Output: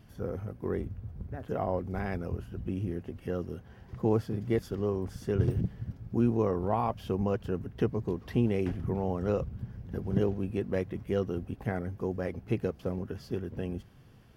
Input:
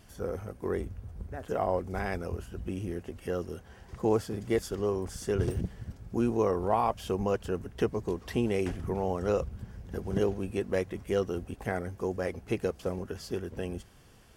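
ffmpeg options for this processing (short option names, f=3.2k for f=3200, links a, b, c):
-af "equalizer=f=125:t=o:w=1:g=9,equalizer=f=250:t=o:w=1:g=4,equalizer=f=8k:t=o:w=1:g=-11,volume=-3.5dB"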